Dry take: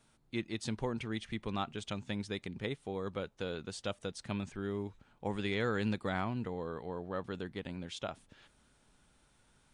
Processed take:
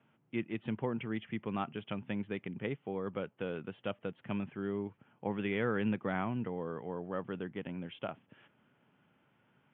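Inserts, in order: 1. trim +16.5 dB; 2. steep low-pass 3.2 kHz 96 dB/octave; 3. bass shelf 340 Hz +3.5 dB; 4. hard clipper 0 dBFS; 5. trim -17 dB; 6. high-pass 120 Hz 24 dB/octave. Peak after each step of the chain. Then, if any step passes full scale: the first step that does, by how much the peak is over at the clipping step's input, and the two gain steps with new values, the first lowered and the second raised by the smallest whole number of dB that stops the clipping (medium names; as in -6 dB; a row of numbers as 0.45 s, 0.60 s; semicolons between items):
-6.0 dBFS, -4.5 dBFS, -4.5 dBFS, -4.5 dBFS, -21.5 dBFS, -19.5 dBFS; nothing clips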